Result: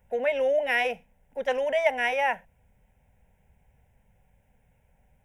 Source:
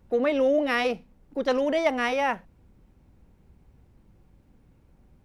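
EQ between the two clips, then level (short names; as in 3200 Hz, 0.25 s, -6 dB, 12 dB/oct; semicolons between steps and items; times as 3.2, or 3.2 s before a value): low shelf 410 Hz -9.5 dB; fixed phaser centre 1200 Hz, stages 6; +3.5 dB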